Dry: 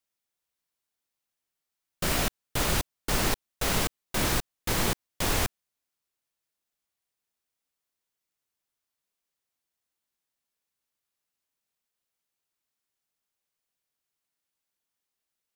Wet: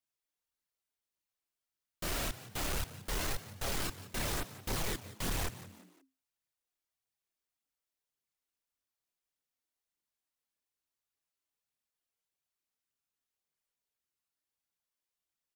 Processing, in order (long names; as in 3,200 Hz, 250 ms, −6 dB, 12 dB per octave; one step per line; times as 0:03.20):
multi-voice chorus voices 2, 0.55 Hz, delay 27 ms, depth 2.2 ms
hard clipping −29.5 dBFS, distortion −8 dB
phase shifter 1.7 Hz, delay 3.4 ms, feedback 33%
echo with shifted repeats 176 ms, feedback 39%, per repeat +88 Hz, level −15.5 dB
level −3.5 dB